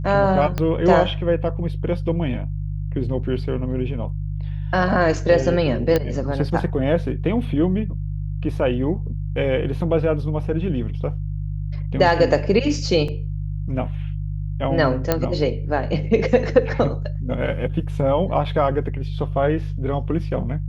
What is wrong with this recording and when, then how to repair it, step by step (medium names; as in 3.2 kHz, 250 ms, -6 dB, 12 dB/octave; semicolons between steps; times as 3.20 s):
hum 50 Hz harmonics 3 -26 dBFS
0.58 s: pop -10 dBFS
5.96 s: pop -7 dBFS
13.08 s: dropout 4 ms
15.12 s: pop -4 dBFS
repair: de-click; de-hum 50 Hz, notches 3; interpolate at 13.08 s, 4 ms